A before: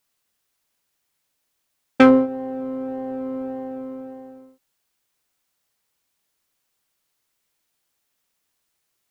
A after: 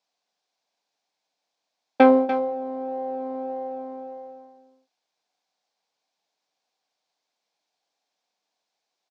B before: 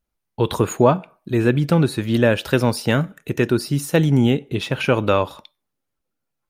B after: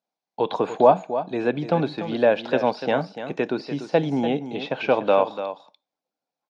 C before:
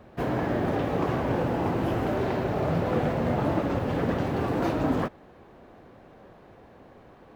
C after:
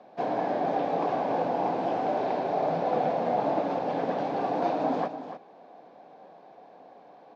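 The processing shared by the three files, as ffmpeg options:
-filter_complex "[0:a]highpass=f=210:w=0.5412,highpass=f=210:w=1.3066,equalizer=f=230:t=q:w=4:g=-7,equalizer=f=360:t=q:w=4:g=-8,equalizer=f=740:t=q:w=4:g=8,equalizer=f=1.3k:t=q:w=4:g=-8,equalizer=f=1.9k:t=q:w=4:g=-7,equalizer=f=2.9k:t=q:w=4:g=-6,lowpass=f=5.6k:w=0.5412,lowpass=f=5.6k:w=1.3066,aecho=1:1:292:0.282,acrossover=split=3800[a][b];[b]acompressor=threshold=-55dB:ratio=4:attack=1:release=60[c];[a][c]amix=inputs=2:normalize=0"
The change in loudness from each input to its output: -2.5, -3.5, -1.0 LU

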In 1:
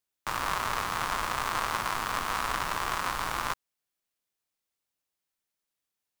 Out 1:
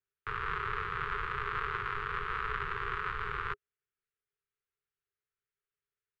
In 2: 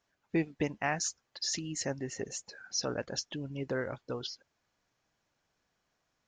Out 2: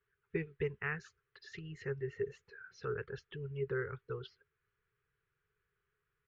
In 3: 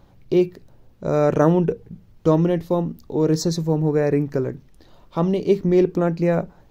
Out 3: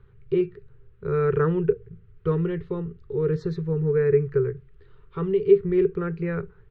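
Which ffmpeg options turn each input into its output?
-filter_complex "[0:a]firequalizer=gain_entry='entry(140,0);entry(270,-28);entry(410,6);entry(600,-28);entry(1300,-4);entry(2200,-11);entry(5500,-24);entry(10000,-9)':delay=0.05:min_phase=1,acrossover=split=590|3300[a][b][c];[c]acrusher=bits=4:mix=0:aa=0.000001[d];[a][b][d]amix=inputs=3:normalize=0,crystalizer=i=6:c=0"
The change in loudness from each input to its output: -5.0, -5.5, -4.0 LU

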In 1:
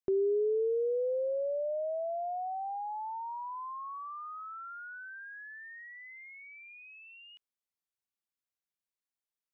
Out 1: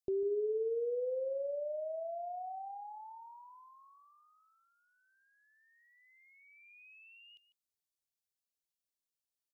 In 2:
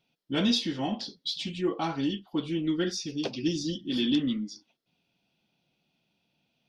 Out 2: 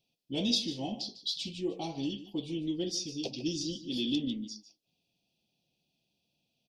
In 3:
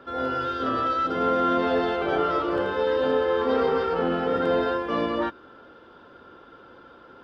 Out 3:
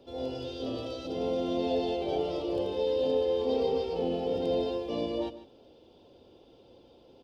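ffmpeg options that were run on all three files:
-filter_complex "[0:a]firequalizer=gain_entry='entry(100,0);entry(170,-4);entry(510,-2);entry(760,-4);entry(1400,-30);entry(2500,-4);entry(4600,3)':delay=0.05:min_phase=1,asplit=2[a][b];[b]aecho=0:1:149:0.188[c];[a][c]amix=inputs=2:normalize=0,volume=-2.5dB"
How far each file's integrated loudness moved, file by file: -2.5, -4.5, -6.5 LU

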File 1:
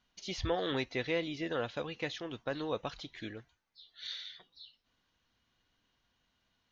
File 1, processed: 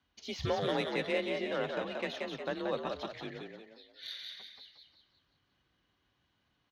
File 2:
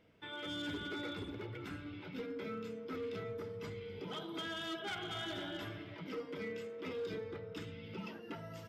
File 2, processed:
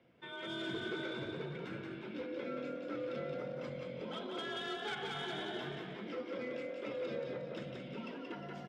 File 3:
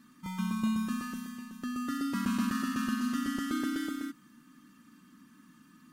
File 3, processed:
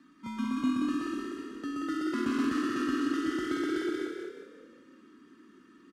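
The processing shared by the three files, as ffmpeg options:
-filter_complex "[0:a]adynamicsmooth=sensitivity=7:basefreq=5.3k,asplit=6[a][b][c][d][e][f];[b]adelay=179,afreqshift=42,volume=-4dB[g];[c]adelay=358,afreqshift=84,volume=-11.5dB[h];[d]adelay=537,afreqshift=126,volume=-19.1dB[i];[e]adelay=716,afreqshift=168,volume=-26.6dB[j];[f]adelay=895,afreqshift=210,volume=-34.1dB[k];[a][g][h][i][j][k]amix=inputs=6:normalize=0,afreqshift=35"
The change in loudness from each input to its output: +1.5, +1.5, +1.5 LU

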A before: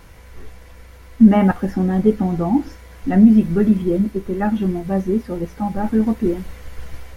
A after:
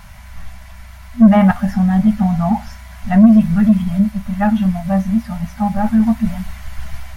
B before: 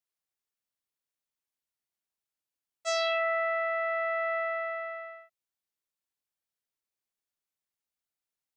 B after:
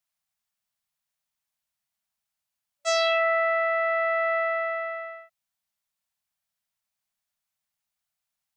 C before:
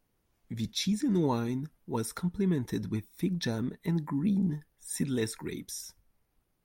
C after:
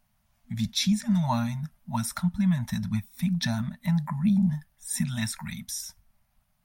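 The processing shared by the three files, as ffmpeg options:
-af "afftfilt=real='re*(1-between(b*sr/4096,240,580))':imag='im*(1-between(b*sr/4096,240,580))':win_size=4096:overlap=0.75,acontrast=68,volume=-1dB"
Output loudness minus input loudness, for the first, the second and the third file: +3.0, +5.5, +4.0 LU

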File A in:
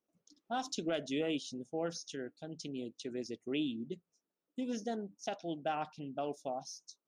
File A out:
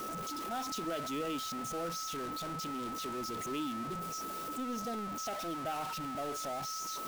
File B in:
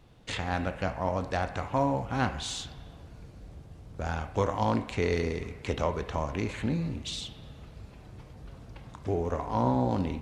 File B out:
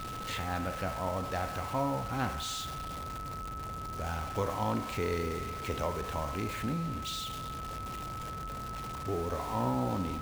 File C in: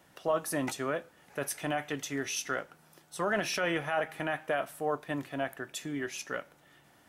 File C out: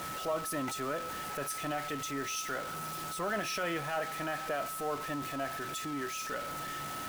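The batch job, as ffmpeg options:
-af "aeval=exprs='val(0)+0.5*0.0237*sgn(val(0))':c=same,acrusher=bits=6:mix=0:aa=0.5,aeval=exprs='val(0)+0.0224*sin(2*PI*1300*n/s)':c=same,volume=-6.5dB"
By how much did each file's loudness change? +2.0, -4.0, -2.0 LU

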